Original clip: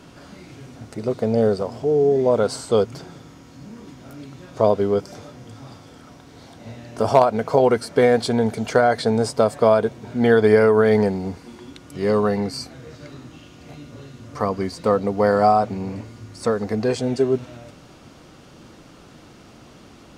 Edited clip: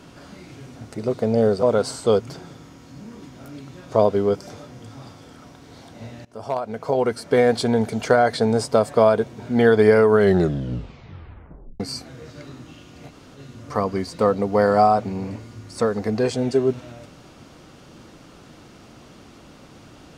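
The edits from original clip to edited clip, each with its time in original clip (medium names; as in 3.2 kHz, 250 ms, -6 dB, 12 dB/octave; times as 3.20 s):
1.63–2.28 s: delete
6.90–8.22 s: fade in linear, from -22.5 dB
10.78 s: tape stop 1.67 s
13.75–14.02 s: room tone, crossfade 0.06 s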